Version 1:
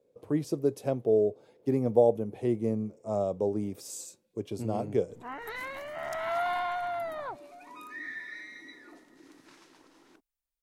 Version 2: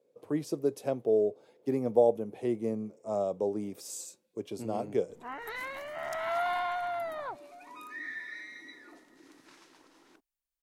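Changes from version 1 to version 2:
speech: add high-pass filter 140 Hz
master: add low-shelf EQ 320 Hz −4.5 dB

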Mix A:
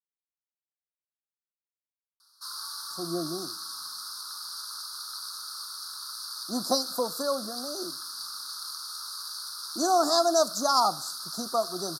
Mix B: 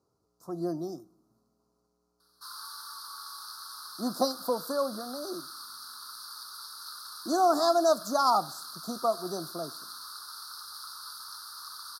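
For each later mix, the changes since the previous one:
speech: entry −2.50 s
master: add parametric band 6,700 Hz −9 dB 1.6 octaves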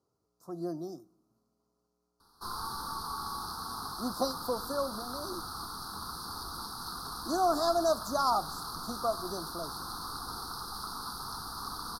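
speech −4.0 dB
background: remove high-pass filter 1,400 Hz 24 dB per octave

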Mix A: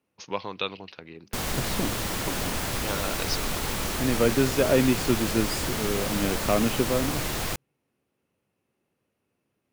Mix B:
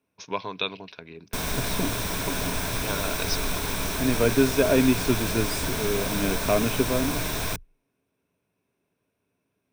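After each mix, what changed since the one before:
master: add EQ curve with evenly spaced ripples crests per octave 1.6, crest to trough 7 dB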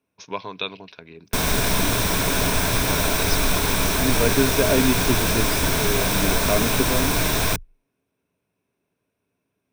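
background +7.5 dB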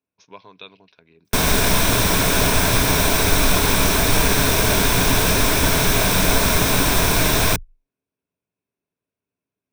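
speech −11.5 dB
background +4.0 dB

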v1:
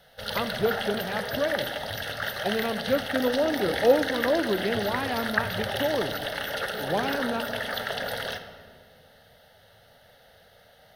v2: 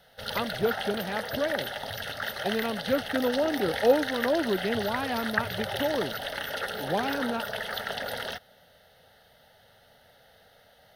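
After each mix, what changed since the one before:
reverb: off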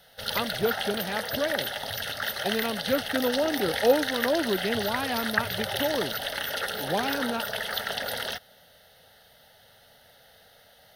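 master: add high-shelf EQ 3,000 Hz +7.5 dB

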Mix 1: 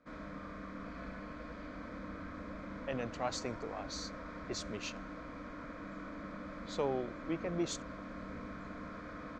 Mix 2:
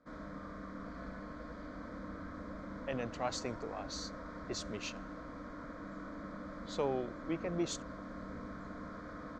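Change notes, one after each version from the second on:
background: add parametric band 2,600 Hz −14.5 dB 0.4 octaves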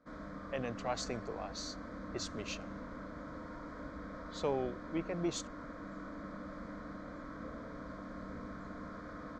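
speech: entry −2.35 s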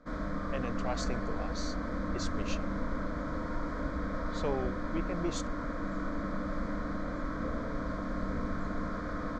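background +9.0 dB
master: remove high-pass filter 88 Hz 6 dB per octave

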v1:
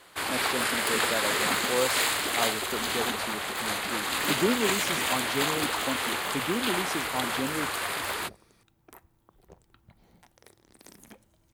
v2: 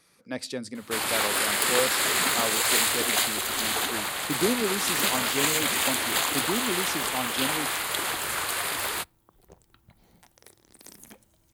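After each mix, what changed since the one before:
first sound: entry +0.75 s
master: add high-shelf EQ 4,800 Hz +7.5 dB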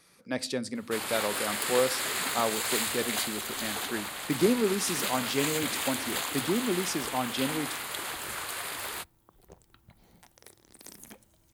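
speech: send +10.0 dB
first sound −7.0 dB

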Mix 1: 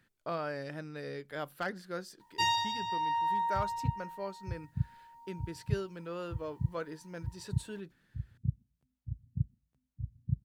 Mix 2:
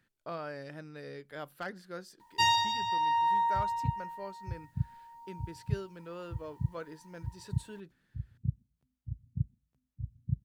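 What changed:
speech −3.5 dB
first sound +3.5 dB

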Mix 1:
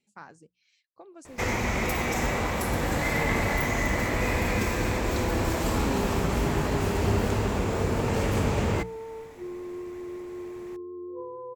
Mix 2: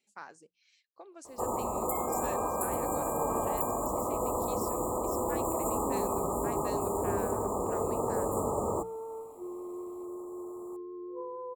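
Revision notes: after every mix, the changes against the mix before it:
first sound: add linear-phase brick-wall band-stop 1,300–6,900 Hz
master: add bass and treble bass −15 dB, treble +2 dB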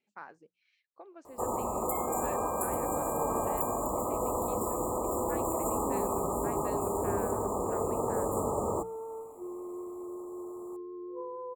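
speech: add low-pass filter 2,400 Hz 12 dB per octave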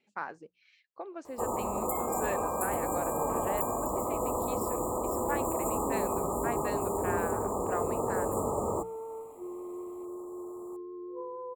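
speech +9.0 dB

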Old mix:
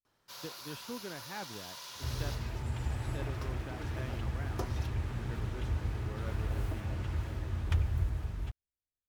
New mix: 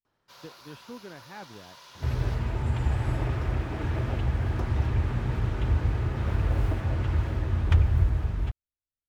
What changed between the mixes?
second sound +9.0 dB
master: add high-shelf EQ 4,600 Hz −11.5 dB

